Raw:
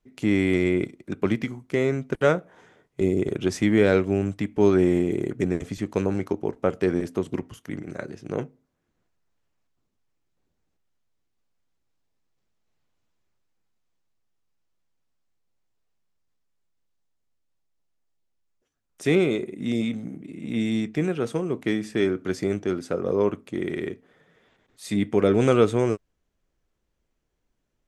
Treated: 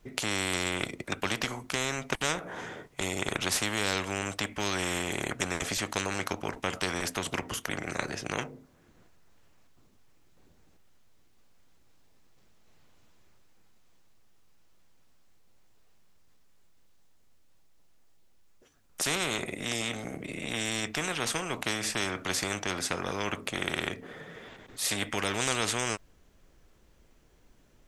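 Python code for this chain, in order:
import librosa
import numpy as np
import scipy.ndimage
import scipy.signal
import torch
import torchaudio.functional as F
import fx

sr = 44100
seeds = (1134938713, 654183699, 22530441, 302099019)

y = fx.spectral_comp(x, sr, ratio=4.0)
y = y * 10.0 ** (-3.5 / 20.0)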